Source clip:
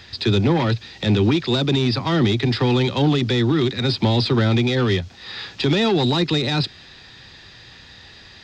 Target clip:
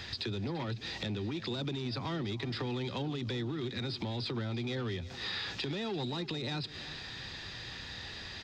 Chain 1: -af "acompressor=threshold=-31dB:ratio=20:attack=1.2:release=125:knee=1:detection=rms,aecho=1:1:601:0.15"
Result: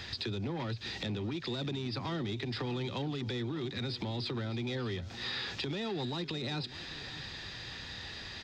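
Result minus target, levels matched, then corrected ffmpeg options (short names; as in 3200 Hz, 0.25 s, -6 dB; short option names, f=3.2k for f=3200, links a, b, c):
echo 0.259 s late
-af "acompressor=threshold=-31dB:ratio=20:attack=1.2:release=125:knee=1:detection=rms,aecho=1:1:342:0.15"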